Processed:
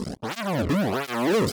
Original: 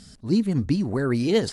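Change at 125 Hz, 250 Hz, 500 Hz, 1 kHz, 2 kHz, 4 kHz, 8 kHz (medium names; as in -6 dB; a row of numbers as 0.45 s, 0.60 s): -3.5 dB, -3.5 dB, 0.0 dB, +10.5 dB, +5.0 dB, +0.5 dB, no reading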